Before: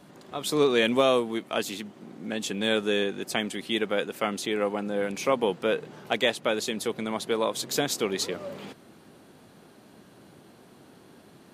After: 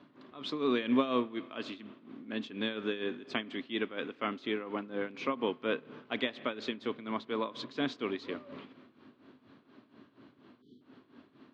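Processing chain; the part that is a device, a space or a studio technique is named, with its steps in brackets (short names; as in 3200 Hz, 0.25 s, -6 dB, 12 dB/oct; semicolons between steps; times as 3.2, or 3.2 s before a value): combo amplifier with spring reverb and tremolo (spring tank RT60 1.6 s, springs 32 ms, chirp 60 ms, DRR 17 dB; tremolo 4.2 Hz, depth 76%; speaker cabinet 93–3900 Hz, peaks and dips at 180 Hz -8 dB, 260 Hz +9 dB, 500 Hz -4 dB, 780 Hz -7 dB, 1100 Hz +5 dB); spectral delete 10.62–10.82, 480–3000 Hz; gain -4 dB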